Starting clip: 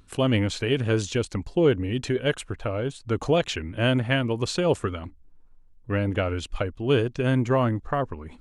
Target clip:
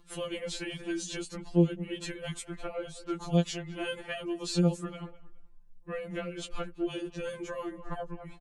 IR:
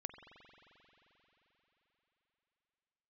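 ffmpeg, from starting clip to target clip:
-filter_complex "[0:a]asplit=2[link_01][link_02];[link_02]adelay=208,lowpass=frequency=3000:poles=1,volume=-21dB,asplit=2[link_03][link_04];[link_04]adelay=208,lowpass=frequency=3000:poles=1,volume=0.28[link_05];[link_01][link_03][link_05]amix=inputs=3:normalize=0,acrossover=split=250|4400[link_06][link_07][link_08];[link_07]acompressor=threshold=-33dB:ratio=6[link_09];[link_06][link_09][link_08]amix=inputs=3:normalize=0,afftfilt=real='re*2.83*eq(mod(b,8),0)':imag='im*2.83*eq(mod(b,8),0)':win_size=2048:overlap=0.75"

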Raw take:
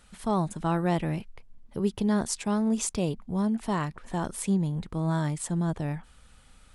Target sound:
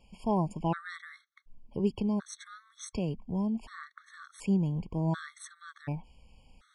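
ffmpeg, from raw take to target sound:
ffmpeg -i in.wav -filter_complex "[0:a]lowpass=5600,asettb=1/sr,asplit=3[link_01][link_02][link_03];[link_01]atrim=end=1.904[link_04];[link_02]atrim=start=1.9:end=4.39,asetpts=PTS-STARTPTS,afade=type=in:duration=0.004:curve=qsin,afade=type=out:start_time=2.486:duration=0.004:curve=qsin,acrossover=split=190[link_05][link_06];[link_06]acompressor=threshold=-34dB:ratio=2[link_07];[link_05][link_07]amix=inputs=2:normalize=0[link_08];[link_03]atrim=start=4.386[link_09];[link_04][link_08]acrossfade=duration=0.004:curve1=hsin:curve2=qsin[link_10];[link_10][link_09]acrossfade=duration=0.004:curve1=qsin:curve2=hsin,afftfilt=real='re*gt(sin(2*PI*0.68*pts/sr)*(1-2*mod(floor(b*sr/1024/1100),2)),0)':imag='im*gt(sin(2*PI*0.68*pts/sr)*(1-2*mod(floor(b*sr/1024/1100),2)),0)':win_size=1024:overlap=0.75,volume=-1.5dB" out.wav

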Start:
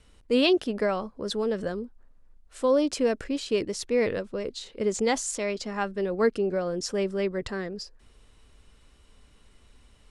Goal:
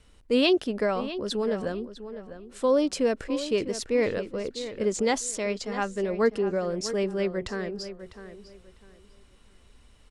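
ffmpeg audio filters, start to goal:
ffmpeg -i in.wav -filter_complex "[0:a]asplit=2[link_01][link_02];[link_02]adelay=651,lowpass=frequency=3200:poles=1,volume=-12dB,asplit=2[link_03][link_04];[link_04]adelay=651,lowpass=frequency=3200:poles=1,volume=0.25,asplit=2[link_05][link_06];[link_06]adelay=651,lowpass=frequency=3200:poles=1,volume=0.25[link_07];[link_01][link_03][link_05][link_07]amix=inputs=4:normalize=0" out.wav

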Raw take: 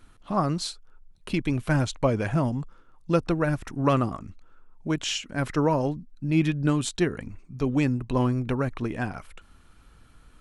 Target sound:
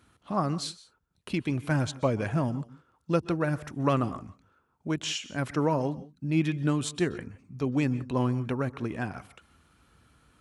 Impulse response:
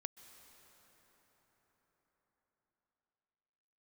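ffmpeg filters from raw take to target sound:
-filter_complex "[0:a]highpass=frequency=64:width=0.5412,highpass=frequency=64:width=1.3066[link_01];[1:a]atrim=start_sample=2205,afade=type=out:start_time=0.23:duration=0.01,atrim=end_sample=10584[link_02];[link_01][link_02]afir=irnorm=-1:irlink=0,volume=1dB"

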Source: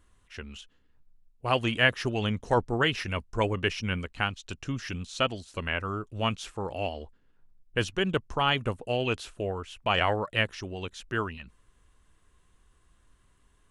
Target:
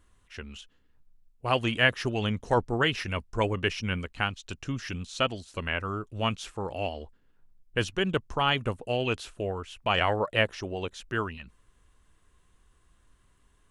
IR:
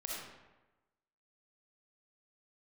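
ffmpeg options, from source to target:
-filter_complex "[0:a]asettb=1/sr,asplit=3[link_01][link_02][link_03];[link_01]atrim=end=10.204[link_04];[link_02]atrim=start=10.2:end=10.97,asetpts=PTS-STARTPTS,afade=type=in:duration=0.004:curve=qsin,afade=type=out:start_time=0.766:duration=0.004:curve=qsin,equalizer=frequency=590:width=0.94:gain=6.5[link_05];[link_03]atrim=start=10.966[link_06];[link_04][link_05]acrossfade=duration=0.004:curve1=hsin:curve2=qsin[link_07];[link_07][link_06]acrossfade=duration=0.004:curve1=qsin:curve2=hsin"

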